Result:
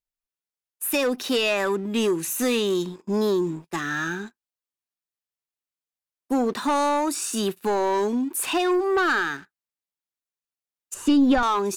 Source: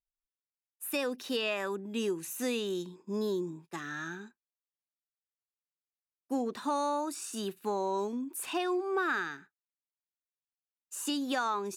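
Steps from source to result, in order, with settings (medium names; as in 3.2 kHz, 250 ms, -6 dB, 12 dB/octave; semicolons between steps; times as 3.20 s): waveshaping leveller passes 2; 10.94–11.43 s: RIAA curve playback; trim +4.5 dB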